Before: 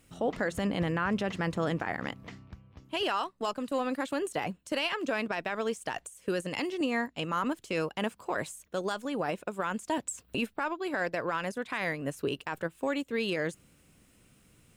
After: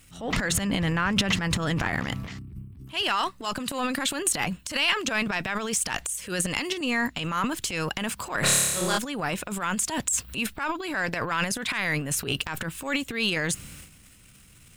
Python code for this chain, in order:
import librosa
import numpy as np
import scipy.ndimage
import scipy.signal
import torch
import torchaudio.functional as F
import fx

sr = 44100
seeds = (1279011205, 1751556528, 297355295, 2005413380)

p1 = fx.transient(x, sr, attack_db=-9, sustain_db=11)
p2 = fx.peak_eq(p1, sr, hz=450.0, db=-11.5, octaves=2.4)
p3 = fx.room_flutter(p2, sr, wall_m=4.9, rt60_s=1.2, at=(8.42, 8.97), fade=0.02)
p4 = 10.0 ** (-27.5 / 20.0) * np.tanh(p3 / 10.0 ** (-27.5 / 20.0))
p5 = p3 + (p4 * librosa.db_to_amplitude(-4.5))
p6 = fx.spec_box(p5, sr, start_s=2.39, length_s=0.48, low_hz=420.0, high_hz=7700.0, gain_db=-20)
y = p6 * librosa.db_to_amplitude(6.5)